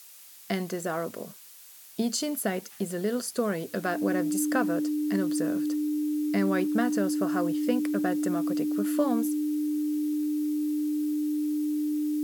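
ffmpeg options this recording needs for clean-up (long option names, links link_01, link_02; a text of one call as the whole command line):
ffmpeg -i in.wav -af "bandreject=frequency=300:width=30,afftdn=noise_reduction=25:noise_floor=-49" out.wav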